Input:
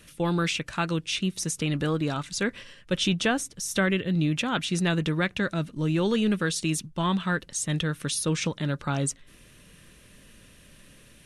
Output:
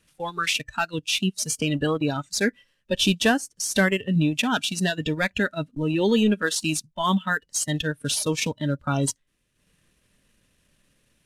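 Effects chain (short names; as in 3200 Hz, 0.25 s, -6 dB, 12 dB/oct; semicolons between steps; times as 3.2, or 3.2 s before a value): CVSD 64 kbps; spectral noise reduction 18 dB; transient shaper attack 0 dB, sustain -8 dB; gain +5.5 dB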